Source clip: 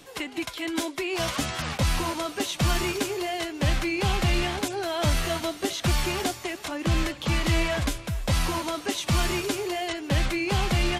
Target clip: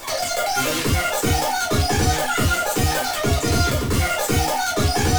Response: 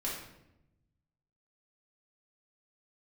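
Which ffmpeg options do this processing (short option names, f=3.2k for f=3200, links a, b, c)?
-filter_complex "[0:a]asplit=2[a][b];[b]aeval=exprs='(mod(26.6*val(0)+1,2)-1)/26.6':c=same,volume=-9dB[c];[a][c]amix=inputs=2:normalize=0,aeval=exprs='0.211*(cos(1*acos(clip(val(0)/0.211,-1,1)))-cos(1*PI/2))+0.0119*(cos(2*acos(clip(val(0)/0.211,-1,1)))-cos(2*PI/2))':c=same[d];[1:a]atrim=start_sample=2205,atrim=end_sample=6174,asetrate=35721,aresample=44100[e];[d][e]afir=irnorm=-1:irlink=0,areverse,acompressor=mode=upward:threshold=-16dB:ratio=2.5,areverse,asetrate=93492,aresample=44100"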